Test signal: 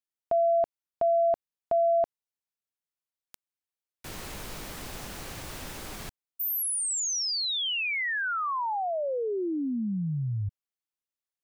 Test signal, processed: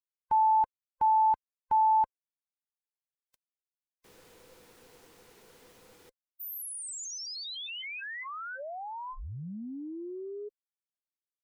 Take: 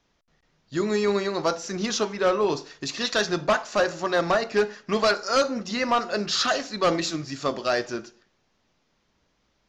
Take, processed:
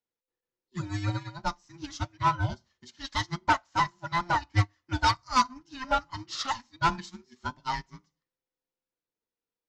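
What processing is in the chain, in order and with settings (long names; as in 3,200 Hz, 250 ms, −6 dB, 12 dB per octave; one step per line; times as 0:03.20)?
frequency inversion band by band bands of 500 Hz
expander for the loud parts 2.5 to 1, over −35 dBFS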